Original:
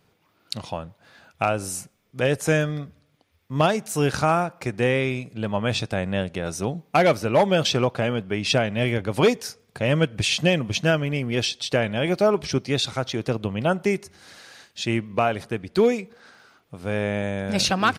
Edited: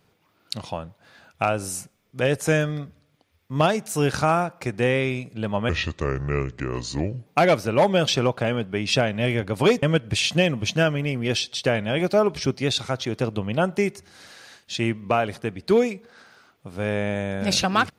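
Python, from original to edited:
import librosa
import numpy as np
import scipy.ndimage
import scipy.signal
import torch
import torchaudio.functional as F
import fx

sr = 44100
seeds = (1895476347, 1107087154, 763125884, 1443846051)

y = fx.edit(x, sr, fx.speed_span(start_s=5.69, length_s=1.15, speed=0.73),
    fx.cut(start_s=9.4, length_s=0.5), tone=tone)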